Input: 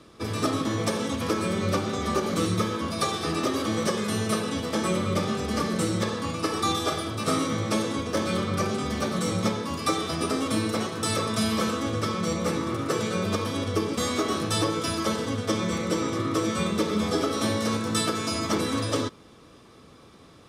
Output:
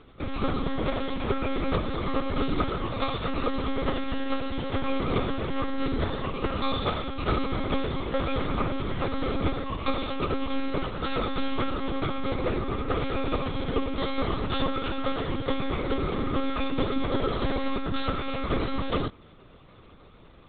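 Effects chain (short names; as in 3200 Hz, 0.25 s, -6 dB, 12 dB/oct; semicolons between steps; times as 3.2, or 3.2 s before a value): monotone LPC vocoder at 8 kHz 270 Hz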